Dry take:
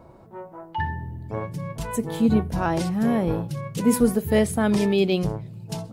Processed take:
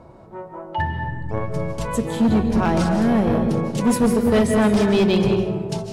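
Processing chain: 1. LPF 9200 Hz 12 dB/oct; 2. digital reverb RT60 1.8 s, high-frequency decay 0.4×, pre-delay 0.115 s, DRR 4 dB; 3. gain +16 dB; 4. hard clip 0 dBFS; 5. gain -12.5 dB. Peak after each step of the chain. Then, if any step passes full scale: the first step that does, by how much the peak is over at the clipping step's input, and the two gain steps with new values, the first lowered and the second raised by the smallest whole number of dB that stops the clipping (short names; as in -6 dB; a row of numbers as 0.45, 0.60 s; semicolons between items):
-7.5, -7.0, +9.0, 0.0, -12.5 dBFS; step 3, 9.0 dB; step 3 +7 dB, step 5 -3.5 dB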